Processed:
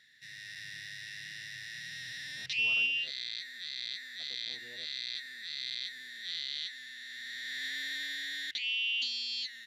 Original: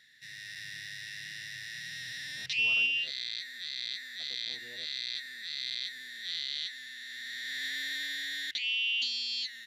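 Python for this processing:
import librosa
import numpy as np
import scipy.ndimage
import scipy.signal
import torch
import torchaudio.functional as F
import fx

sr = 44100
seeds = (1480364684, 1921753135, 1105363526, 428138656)

y = fx.high_shelf(x, sr, hz=9700.0, db=-4.5)
y = y * librosa.db_to_amplitude(-1.5)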